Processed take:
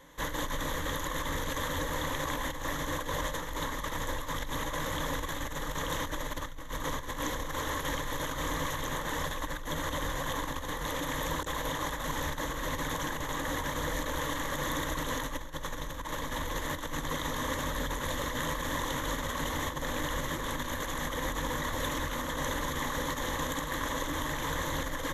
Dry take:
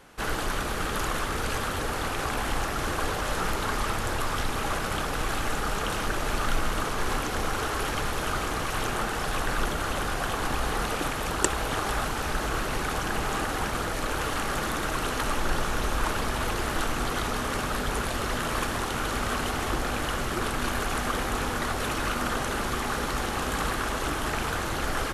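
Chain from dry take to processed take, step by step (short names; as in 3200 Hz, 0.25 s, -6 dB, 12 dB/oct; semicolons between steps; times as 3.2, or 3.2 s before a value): negative-ratio compressor -29 dBFS, ratio -0.5; ripple EQ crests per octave 1.1, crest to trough 13 dB; gain -6 dB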